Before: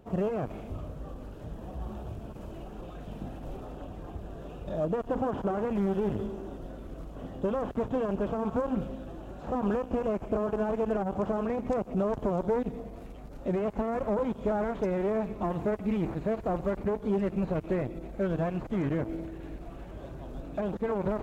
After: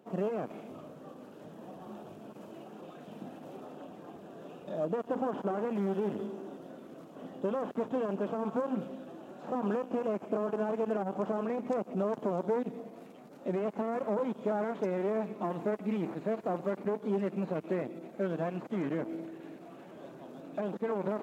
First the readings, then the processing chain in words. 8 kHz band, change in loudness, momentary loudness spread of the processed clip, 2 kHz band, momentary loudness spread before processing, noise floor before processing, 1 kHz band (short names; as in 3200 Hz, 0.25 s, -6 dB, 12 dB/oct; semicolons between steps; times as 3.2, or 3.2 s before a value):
n/a, -2.5 dB, 16 LU, -2.5 dB, 14 LU, -44 dBFS, -2.5 dB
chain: HPF 180 Hz 24 dB/oct; gain -2.5 dB